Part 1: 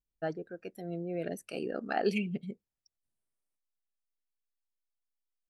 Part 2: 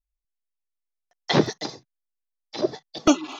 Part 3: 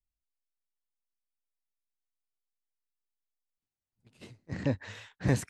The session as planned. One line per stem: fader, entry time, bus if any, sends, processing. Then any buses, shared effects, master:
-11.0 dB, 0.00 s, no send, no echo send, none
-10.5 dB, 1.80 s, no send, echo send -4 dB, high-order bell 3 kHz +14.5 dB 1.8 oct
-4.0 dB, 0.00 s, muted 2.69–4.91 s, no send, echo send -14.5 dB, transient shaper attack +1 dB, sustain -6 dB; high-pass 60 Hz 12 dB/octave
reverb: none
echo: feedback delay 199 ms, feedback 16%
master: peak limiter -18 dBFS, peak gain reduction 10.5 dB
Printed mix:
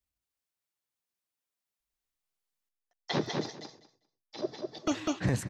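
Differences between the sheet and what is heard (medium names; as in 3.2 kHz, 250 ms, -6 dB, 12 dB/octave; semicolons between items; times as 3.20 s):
stem 1: muted; stem 2: missing high-order bell 3 kHz +14.5 dB 1.8 oct; stem 3 -4.0 dB -> +5.5 dB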